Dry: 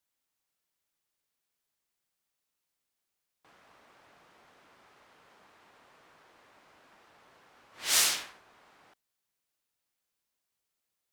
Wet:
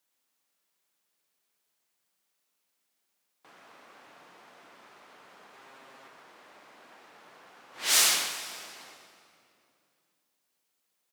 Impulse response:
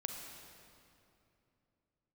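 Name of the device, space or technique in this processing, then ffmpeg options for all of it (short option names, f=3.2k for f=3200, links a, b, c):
saturated reverb return: -filter_complex "[0:a]asplit=2[a][b];[1:a]atrim=start_sample=2205[c];[b][c]afir=irnorm=-1:irlink=0,asoftclip=type=tanh:threshold=-30dB,volume=0.5dB[d];[a][d]amix=inputs=2:normalize=0,asettb=1/sr,asplit=3[e][f][g];[e]atrim=end=5.534[h];[f]atrim=start=5.53:end=6.08,asetpts=PTS-STARTPTS,afade=t=in:d=0.004:c=qsin,afade=t=out:st=0.546:d=0.004:c=qsin,aecho=1:1:7.5:0.74,atrim=end_sample=24255[i];[g]atrim=start=6.076[j];[h][i]acrossfade=d=0.004:c1=hsin:c2=qsin[k];[k][j]acrossfade=d=0.004:c1=qsin:c2=hsin,highpass=180,asplit=2[l][m];[m]adelay=122.4,volume=-7dB,highshelf=f=4k:g=-2.76[n];[l][n]amix=inputs=2:normalize=0"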